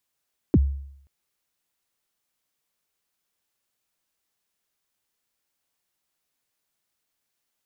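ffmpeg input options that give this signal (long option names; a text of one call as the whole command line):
ffmpeg -f lavfi -i "aevalsrc='0.282*pow(10,-3*t/0.7)*sin(2*PI*(390*0.04/log(69/390)*(exp(log(69/390)*min(t,0.04)/0.04)-1)+69*max(t-0.04,0)))':duration=0.53:sample_rate=44100" out.wav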